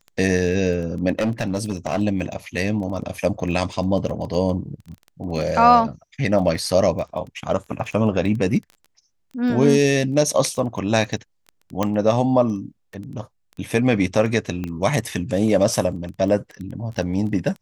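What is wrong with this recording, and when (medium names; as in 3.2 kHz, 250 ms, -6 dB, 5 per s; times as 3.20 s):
crackle 12 per s -29 dBFS
1.12–2.01 s: clipped -16.5 dBFS
11.83 s: pop -8 dBFS
14.64 s: pop -16 dBFS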